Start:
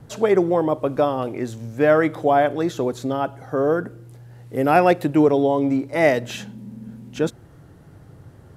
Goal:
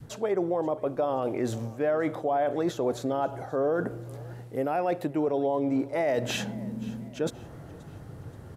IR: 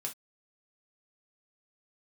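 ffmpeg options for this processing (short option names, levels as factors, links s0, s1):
-af "areverse,acompressor=threshold=0.0501:ratio=10,areverse,adynamicequalizer=threshold=0.00562:dfrequency=650:dqfactor=0.88:tfrequency=650:tqfactor=0.88:attack=5:release=100:ratio=0.375:range=3.5:mode=boostabove:tftype=bell,alimiter=limit=0.1:level=0:latency=1:release=127,aecho=1:1:528|1056|1584:0.0841|0.0395|0.0186,volume=1.19"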